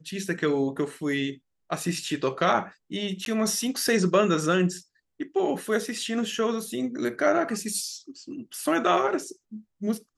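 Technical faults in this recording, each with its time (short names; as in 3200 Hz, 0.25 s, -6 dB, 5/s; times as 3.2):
3.25–3.26 gap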